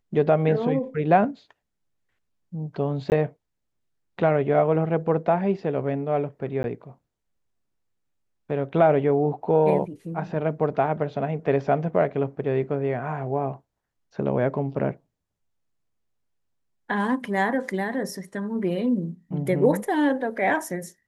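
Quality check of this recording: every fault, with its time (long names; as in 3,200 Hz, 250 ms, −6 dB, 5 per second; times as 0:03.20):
0:03.10–0:03.12: drop-out 19 ms
0:06.63–0:06.64: drop-out 11 ms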